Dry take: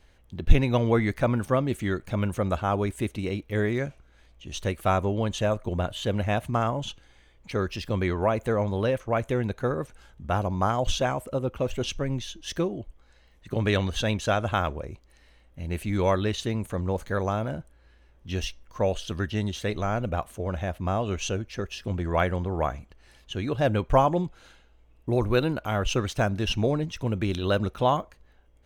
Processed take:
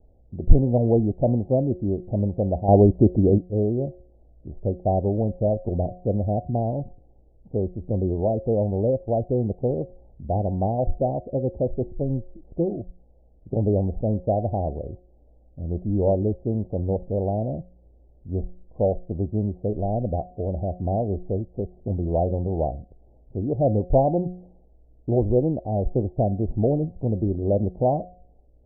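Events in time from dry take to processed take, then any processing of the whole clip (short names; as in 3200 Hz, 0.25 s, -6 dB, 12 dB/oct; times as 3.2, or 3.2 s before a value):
2.68–3.38 gain +9 dB
6.19–8.45 air absorption 430 m
whole clip: steep low-pass 770 Hz 72 dB/oct; de-hum 180.3 Hz, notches 4; gain +3.5 dB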